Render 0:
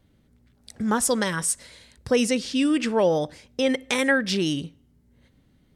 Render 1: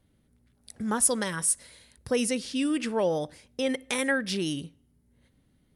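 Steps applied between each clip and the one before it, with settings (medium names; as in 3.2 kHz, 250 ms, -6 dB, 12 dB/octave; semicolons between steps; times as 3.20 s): peaking EQ 10 kHz +13.5 dB 0.21 oct; trim -5.5 dB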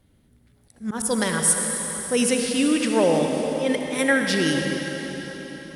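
slow attack 123 ms; on a send at -2 dB: reverberation RT60 4.7 s, pre-delay 58 ms; on the sum: trim +6 dB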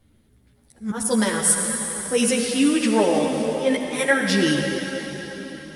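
three-phase chorus; trim +4 dB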